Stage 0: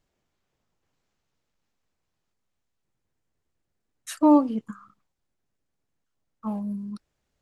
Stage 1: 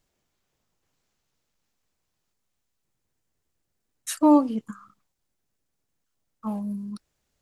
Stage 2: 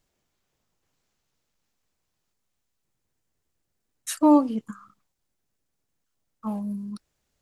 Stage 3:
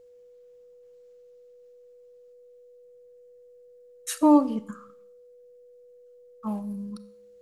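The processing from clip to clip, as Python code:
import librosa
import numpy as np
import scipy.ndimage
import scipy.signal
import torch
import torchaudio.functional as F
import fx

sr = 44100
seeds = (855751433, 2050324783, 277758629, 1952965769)

y1 = fx.high_shelf(x, sr, hz=4500.0, db=8.0)
y2 = y1
y3 = y2 + 10.0 ** (-50.0 / 20.0) * np.sin(2.0 * np.pi * 490.0 * np.arange(len(y2)) / sr)
y3 = fx.rev_schroeder(y3, sr, rt60_s=0.63, comb_ms=30, drr_db=15.5)
y3 = y3 * 10.0 ** (-1.0 / 20.0)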